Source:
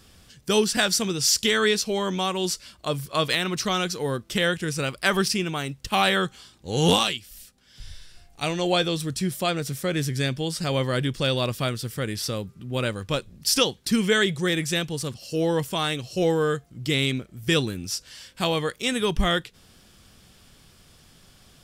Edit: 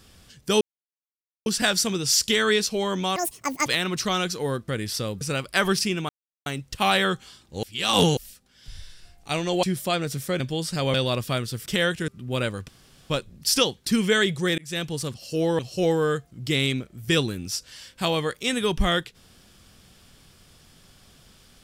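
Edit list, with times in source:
0.61 insert silence 0.85 s
2.31–3.26 speed 190%
4.28–4.7 swap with 11.97–12.5
5.58 insert silence 0.37 s
6.75–7.29 reverse
8.75–9.18 cut
9.95–10.28 cut
10.82–11.25 cut
13.1 insert room tone 0.42 s
14.58–14.87 fade in
15.59–15.98 cut

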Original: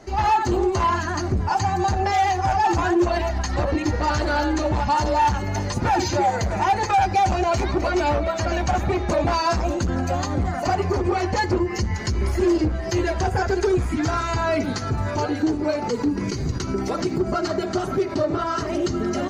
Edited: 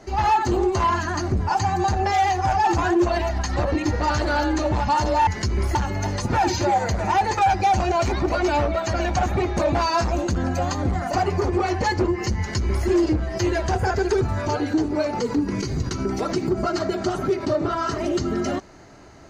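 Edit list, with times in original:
11.91–12.39 copy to 5.27
13.73–14.9 cut

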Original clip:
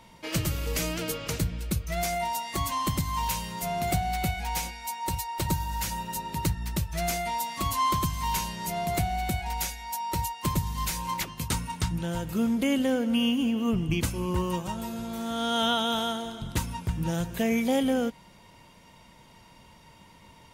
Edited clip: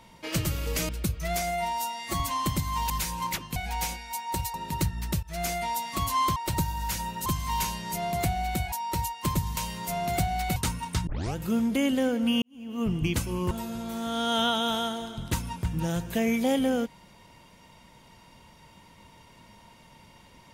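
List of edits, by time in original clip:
0.89–1.56 cut
2.09–2.61 stretch 1.5×
3.31–4.3 swap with 10.77–11.43
5.28–6.18 move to 8
6.87–7.25 fade in equal-power, from -14.5 dB
9.46–9.92 cut
11.94 tape start 0.29 s
13.29–13.76 fade in quadratic
14.38–14.75 cut

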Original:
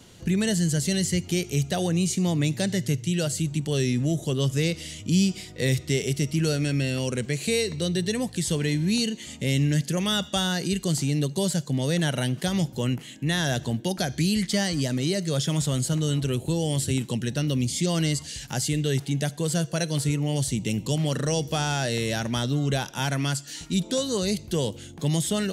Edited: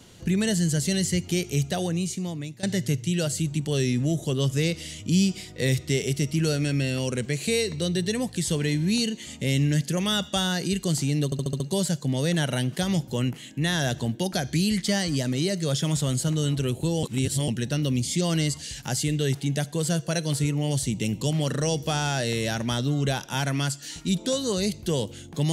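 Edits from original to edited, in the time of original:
1.62–2.63 fade out, to -17.5 dB
11.25 stutter 0.07 s, 6 plays
16.68–17.13 reverse

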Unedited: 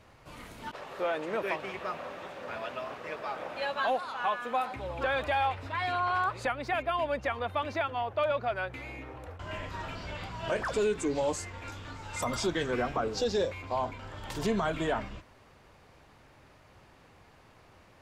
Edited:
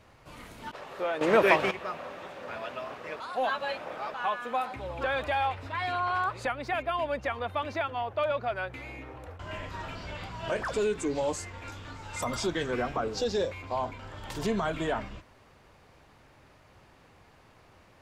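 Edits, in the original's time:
1.21–1.71 gain +11 dB
3.2–4.14 reverse

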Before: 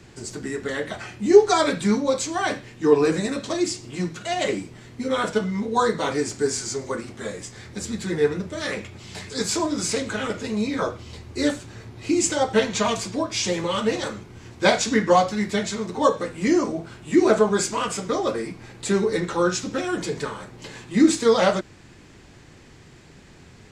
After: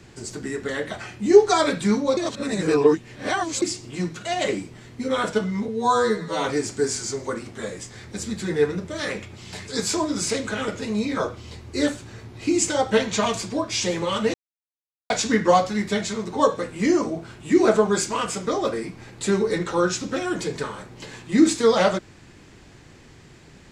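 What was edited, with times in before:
2.17–3.62 reverse
5.68–6.06 stretch 2×
13.96–14.72 mute

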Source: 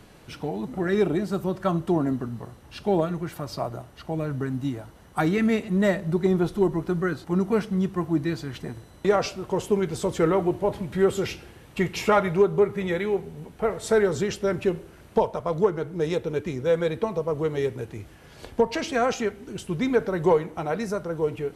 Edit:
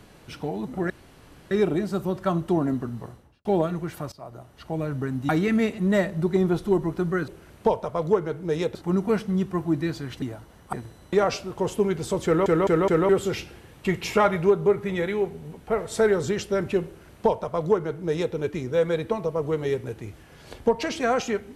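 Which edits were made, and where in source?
0.9 insert room tone 0.61 s
2.46–2.84 studio fade out
3.51–4.13 fade in, from -20.5 dB
4.68–5.19 move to 8.65
10.17 stutter in place 0.21 s, 4 plays
14.79–16.26 copy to 7.18

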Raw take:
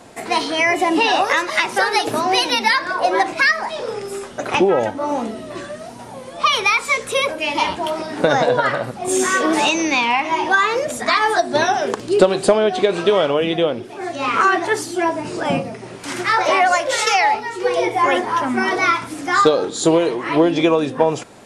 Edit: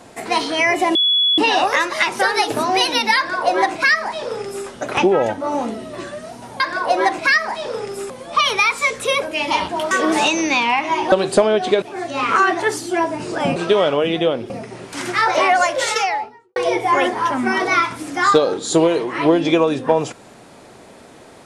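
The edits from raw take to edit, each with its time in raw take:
0.95 add tone 3390 Hz -12.5 dBFS 0.43 s
2.74–4.24 copy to 6.17
7.98–9.32 cut
10.53–12.23 cut
12.93–13.87 move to 15.61
16.91–17.67 studio fade out

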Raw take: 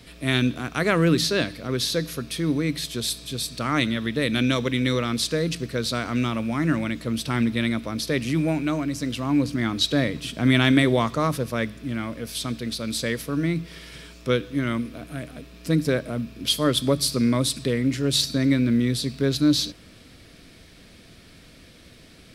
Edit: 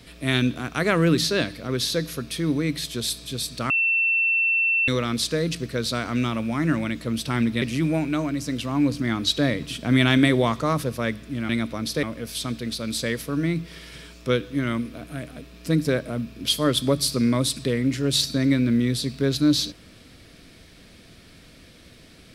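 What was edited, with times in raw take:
3.7–4.88 bleep 2690 Hz -18 dBFS
7.62–8.16 move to 12.03

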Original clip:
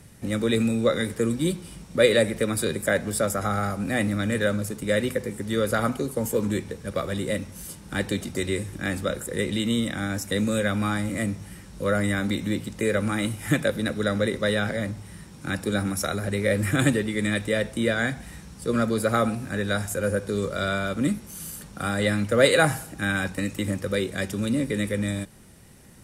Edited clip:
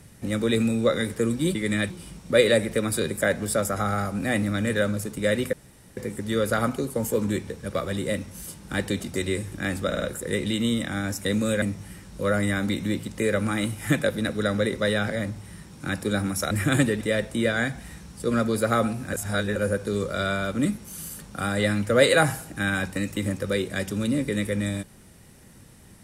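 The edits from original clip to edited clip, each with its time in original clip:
5.18 insert room tone 0.44 s
9.08 stutter 0.05 s, 4 plays
10.68–11.23 cut
16.12–16.58 cut
17.08–17.43 move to 1.55
19.55–19.98 reverse

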